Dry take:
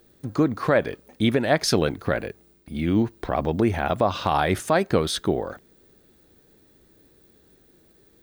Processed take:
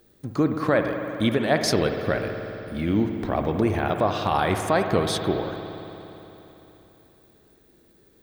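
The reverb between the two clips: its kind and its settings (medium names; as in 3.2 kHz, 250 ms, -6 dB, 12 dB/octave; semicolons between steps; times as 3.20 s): spring tank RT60 3.5 s, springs 58 ms, chirp 55 ms, DRR 5 dB; trim -1.5 dB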